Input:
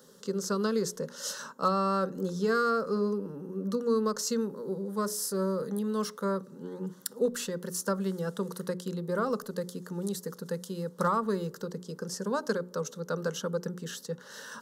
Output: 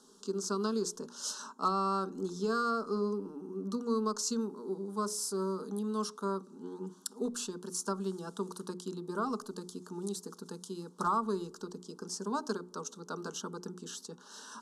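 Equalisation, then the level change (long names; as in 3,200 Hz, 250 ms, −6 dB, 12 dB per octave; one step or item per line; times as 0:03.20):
low-pass filter 9,900 Hz 24 dB per octave
phaser with its sweep stopped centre 530 Hz, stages 6
0.0 dB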